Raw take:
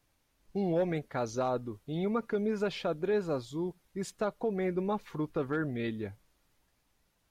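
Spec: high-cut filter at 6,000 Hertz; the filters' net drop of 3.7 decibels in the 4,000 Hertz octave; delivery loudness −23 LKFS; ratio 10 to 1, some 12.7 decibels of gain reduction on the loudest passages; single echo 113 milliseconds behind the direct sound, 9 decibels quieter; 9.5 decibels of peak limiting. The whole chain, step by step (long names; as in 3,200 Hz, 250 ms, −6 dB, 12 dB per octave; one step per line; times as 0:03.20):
low-pass filter 6,000 Hz
parametric band 4,000 Hz −4 dB
downward compressor 10 to 1, threshold −39 dBFS
brickwall limiter −39.5 dBFS
single-tap delay 113 ms −9 dB
level +25 dB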